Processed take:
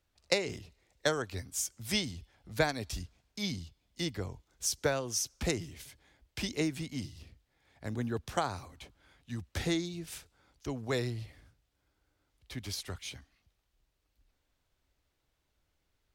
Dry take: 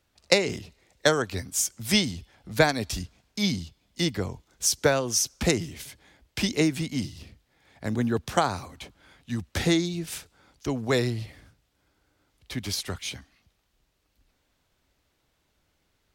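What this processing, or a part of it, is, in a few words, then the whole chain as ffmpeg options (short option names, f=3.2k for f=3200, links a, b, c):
low shelf boost with a cut just above: -af "lowshelf=f=67:g=8,equalizer=f=200:t=o:w=0.62:g=-3.5,volume=-8.5dB"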